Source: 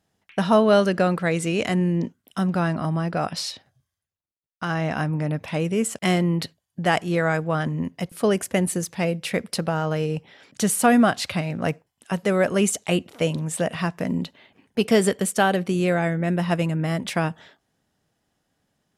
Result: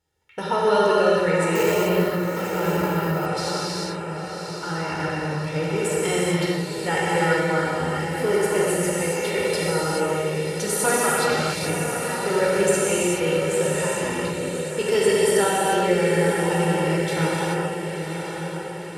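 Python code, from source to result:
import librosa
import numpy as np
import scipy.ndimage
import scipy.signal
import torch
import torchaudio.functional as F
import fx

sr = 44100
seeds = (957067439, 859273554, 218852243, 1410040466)

y = x + 0.83 * np.pad(x, (int(2.2 * sr / 1000.0), 0))[:len(x)]
y = fx.echo_diffused(y, sr, ms=1000, feedback_pct=51, wet_db=-7.0)
y = fx.rev_gated(y, sr, seeds[0], gate_ms=460, shape='flat', drr_db=-7.0)
y = fx.resample_bad(y, sr, factor=3, down='none', up='hold', at=(1.55, 3.26))
y = y * 10.0 ** (-7.5 / 20.0)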